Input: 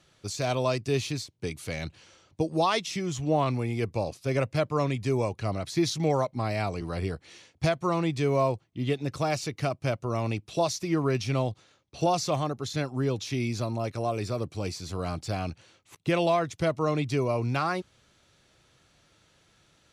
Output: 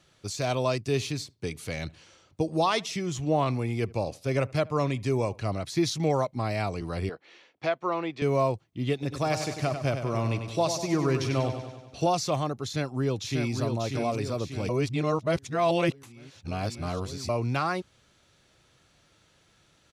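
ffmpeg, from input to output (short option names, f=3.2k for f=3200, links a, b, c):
-filter_complex "[0:a]asettb=1/sr,asplit=3[a][b][c];[a]atrim=end=0.864[d];[b]atrim=start=0.86:end=5.54,asetpts=PTS-STARTPTS,afade=t=in:d=0.004:c=qsin,afade=t=out:st=4.676:d=0.004:c=qsin,asplit=2[e][f];[f]adelay=76,lowpass=f=1.8k:p=1,volume=-23dB,asplit=2[g][h];[h]adelay=76,lowpass=f=1.8k:p=1,volume=0.33[i];[e][g][i]amix=inputs=3:normalize=0,atrim=end_sample=206388[j];[c]atrim=start=5.536[k];[d][j]acrossfade=d=0.004:c1=hsin:c2=qsin[l];[l][k]acrossfade=d=0.004:c1=qsin:c2=hsin,asettb=1/sr,asplit=3[m][n][o];[m]atrim=end=7.094[p];[n]atrim=start=7.09:end=8.22,asetpts=PTS-STARTPTS,afade=t=in:d=0.004:c=qsin,afade=t=out:st=1.126:d=0.004:c=qsin,highpass=350,lowpass=3.1k[q];[o]atrim=start=8.216[r];[p][q]acrossfade=d=0.004:c1=hsin:c2=qsin[s];[s][r]acrossfade=d=0.004:c1=qsin:c2=hsin,asettb=1/sr,asplit=3[t][u][v];[t]atrim=end=8.934[w];[u]atrim=start=8.93:end=12.08,asetpts=PTS-STARTPTS,afade=t=in:d=0.004:c=qsin,afade=t=out:st=3.146:d=0.004:c=qsin,aecho=1:1:96|192|288|384|480|576|672:0.398|0.231|0.134|0.0777|0.0451|0.0261|0.0152,atrim=end_sample=138915[x];[v]atrim=start=12.076[y];[w][x]acrossfade=d=0.004:c1=hsin:c2=qsin[z];[z][y]acrossfade=d=0.004:c1=qsin:c2=hsin,asplit=2[aa][ab];[ab]afade=t=in:st=12.65:d=0.01,afade=t=out:st=13.56:d=0.01,aecho=0:1:590|1180|1770|2360|2950|3540|4130:0.562341|0.309288|0.170108|0.0935595|0.0514577|0.0283018|0.015566[ac];[aa][ac]amix=inputs=2:normalize=0,asplit=3[ad][ae][af];[ad]atrim=end=14.692[ag];[ae]atrim=start=14.688:end=17.292,asetpts=PTS-STARTPTS,areverse[ah];[af]atrim=start=17.288[ai];[ag][ah]acrossfade=d=0.004:c1=hsin:c2=hsin[aj];[aj][ai]acrossfade=d=0.004:c1=hsin:c2=hsin"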